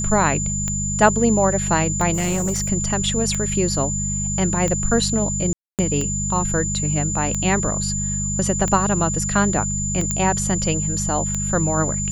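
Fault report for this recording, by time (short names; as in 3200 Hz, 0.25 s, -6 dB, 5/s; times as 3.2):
hum 50 Hz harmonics 4 -26 dBFS
tick 45 rpm -11 dBFS
tone 7100 Hz -24 dBFS
2.13–2.7 clipped -17.5 dBFS
5.53–5.79 gap 0.258 s
10.11 pop -7 dBFS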